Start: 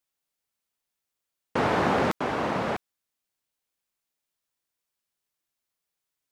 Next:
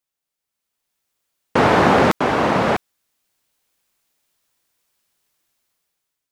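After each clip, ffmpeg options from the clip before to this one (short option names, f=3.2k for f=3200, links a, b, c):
-af "dynaudnorm=f=240:g=7:m=14dB"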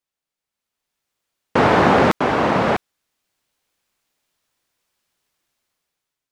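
-af "highshelf=f=7.9k:g=-8"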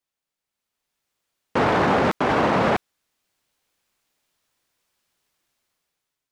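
-af "alimiter=limit=-11.5dB:level=0:latency=1:release=13"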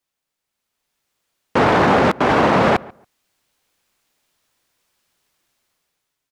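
-filter_complex "[0:a]asplit=2[a][b];[b]adelay=140,lowpass=f=1.7k:p=1,volume=-21.5dB,asplit=2[c][d];[d]adelay=140,lowpass=f=1.7k:p=1,volume=0.19[e];[a][c][e]amix=inputs=3:normalize=0,volume=5dB"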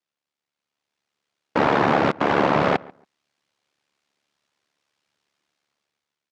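-af "aeval=exprs='val(0)*sin(2*PI*36*n/s)':c=same,highpass=110,lowpass=5.7k,volume=-1.5dB"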